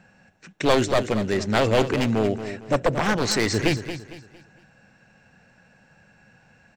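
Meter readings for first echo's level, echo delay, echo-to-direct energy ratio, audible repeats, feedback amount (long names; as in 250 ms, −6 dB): −11.0 dB, 228 ms, −10.5 dB, 3, 35%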